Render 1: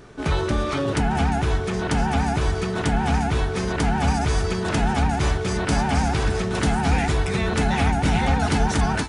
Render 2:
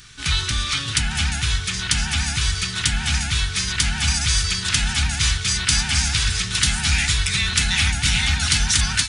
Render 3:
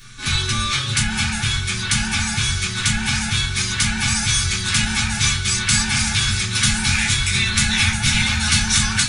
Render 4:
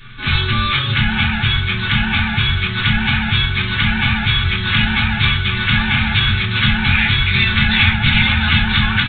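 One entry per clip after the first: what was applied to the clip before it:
FFT filter 110 Hz 0 dB, 550 Hz -24 dB, 1.4 kHz +1 dB, 3.6 kHz +14 dB
reverberation RT60 0.20 s, pre-delay 6 ms, DRR -4 dB; trim -6 dB
resampled via 8 kHz; trim +5.5 dB

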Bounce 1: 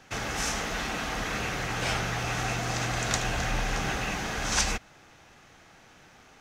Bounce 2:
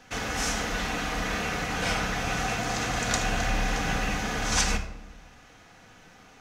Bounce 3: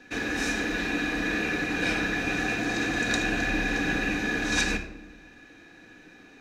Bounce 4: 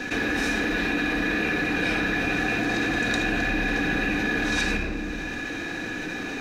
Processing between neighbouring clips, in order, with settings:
simulated room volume 2300 m³, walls furnished, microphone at 1.9 m
small resonant body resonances 320/1700/2400/3800 Hz, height 18 dB, ringing for 30 ms; trim -6.5 dB
dynamic bell 6.9 kHz, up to -6 dB, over -49 dBFS, Q 1.3; level flattener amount 70%

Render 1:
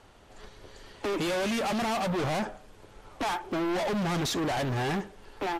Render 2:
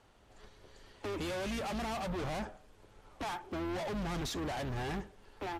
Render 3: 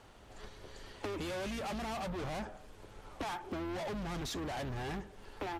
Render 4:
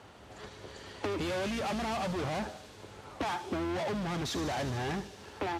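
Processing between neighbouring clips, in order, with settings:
octave divider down 2 oct, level -4 dB; trim -8.5 dB
compression 6:1, threshold -44 dBFS, peak gain reduction 9.5 dB; trim +6.5 dB
high-pass 66 Hz 24 dB/octave; treble shelf 8.8 kHz -8 dB; feedback echo behind a high-pass 75 ms, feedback 84%, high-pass 4.3 kHz, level -7 dB; trim +5.5 dB

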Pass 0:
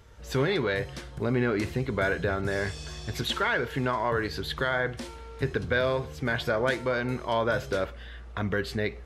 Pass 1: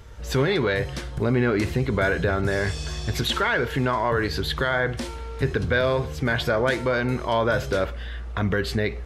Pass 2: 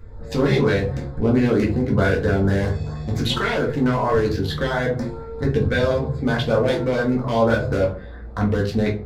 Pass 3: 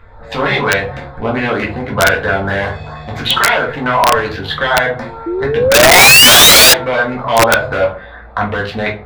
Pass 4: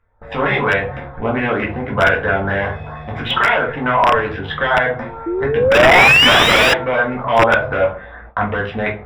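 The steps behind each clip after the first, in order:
bass shelf 75 Hz +6 dB; in parallel at +1 dB: peak limiter -23 dBFS, peak gain reduction 9.5 dB
local Wiener filter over 15 samples; LFO notch saw up 4.4 Hz 700–3000 Hz; simulated room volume 180 m³, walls furnished, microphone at 2 m
painted sound rise, 5.26–6.74 s, 330–1700 Hz -16 dBFS; high-order bell 1.5 kHz +15.5 dB 3 oct; integer overflow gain -1.5 dB; trim -2.5 dB
Savitzky-Golay filter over 25 samples; gate with hold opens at -26 dBFS; trim -2 dB

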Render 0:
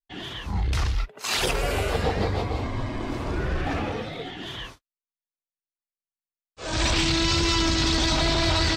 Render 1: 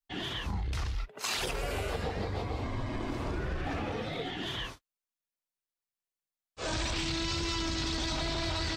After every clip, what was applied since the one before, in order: compression 6:1, threshold -31 dBFS, peak gain reduction 11 dB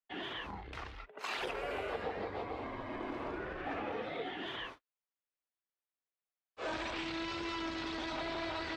three-band isolator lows -16 dB, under 260 Hz, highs -18 dB, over 3.1 kHz; trim -1.5 dB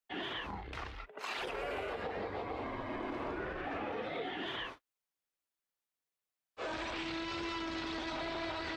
peak limiter -32 dBFS, peak gain reduction 6.5 dB; trim +2 dB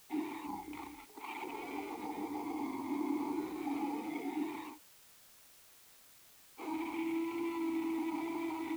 careless resampling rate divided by 8×, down filtered, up hold; vowel filter u; word length cut 12-bit, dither triangular; trim +11.5 dB

